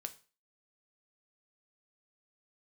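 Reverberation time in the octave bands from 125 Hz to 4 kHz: 0.35, 0.35, 0.35, 0.35, 0.35, 0.35 s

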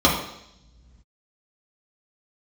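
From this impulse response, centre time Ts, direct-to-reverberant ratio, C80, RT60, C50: 37 ms, -4.5 dB, 7.5 dB, 0.80 s, 5.0 dB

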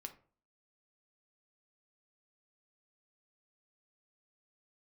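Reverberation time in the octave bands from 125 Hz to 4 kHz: 0.50, 0.50, 0.45, 0.40, 0.35, 0.25 s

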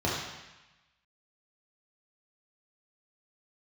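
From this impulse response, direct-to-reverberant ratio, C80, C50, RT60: -6.0 dB, 3.0 dB, 0.5 dB, 1.0 s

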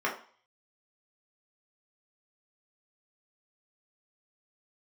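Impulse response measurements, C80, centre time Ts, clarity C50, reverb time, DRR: 14.0 dB, 22 ms, 9.0 dB, 0.45 s, -4.0 dB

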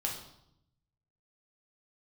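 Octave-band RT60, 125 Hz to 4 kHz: 1.4, 1.0, 0.75, 0.75, 0.60, 0.70 s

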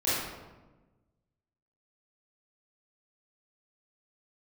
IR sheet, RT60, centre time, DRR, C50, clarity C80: 1.2 s, 94 ms, -12.0 dB, -3.0 dB, 1.0 dB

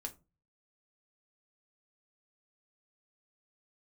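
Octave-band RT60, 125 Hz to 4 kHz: 0.60, 0.40, 0.30, 0.25, 0.20, 0.15 s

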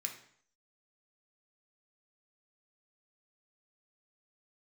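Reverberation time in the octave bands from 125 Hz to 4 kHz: 0.60, 0.60, 0.60, 0.60, 0.60, 0.55 s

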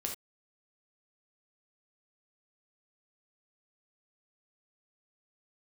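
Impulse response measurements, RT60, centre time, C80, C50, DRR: not exponential, 22 ms, 13.0 dB, 6.0 dB, 1.0 dB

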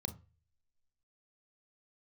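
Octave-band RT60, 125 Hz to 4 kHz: 0.55, 0.30, 0.35, 0.30, 0.65, 0.30 s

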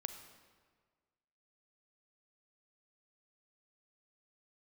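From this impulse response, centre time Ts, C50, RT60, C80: 20 ms, 9.0 dB, 1.6 s, 10.0 dB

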